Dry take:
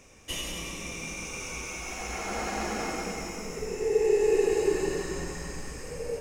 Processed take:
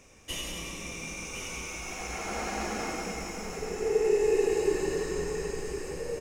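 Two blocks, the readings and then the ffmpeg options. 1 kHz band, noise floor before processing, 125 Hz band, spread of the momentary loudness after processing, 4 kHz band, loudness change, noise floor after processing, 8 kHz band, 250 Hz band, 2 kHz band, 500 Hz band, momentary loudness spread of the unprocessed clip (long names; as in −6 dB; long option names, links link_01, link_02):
−1.0 dB, −39 dBFS, −1.0 dB, 11 LU, −1.0 dB, −1.0 dB, −40 dBFS, −1.0 dB, −1.0 dB, −1.0 dB, −1.0 dB, 13 LU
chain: -af "aecho=1:1:1061:0.316,volume=-1.5dB"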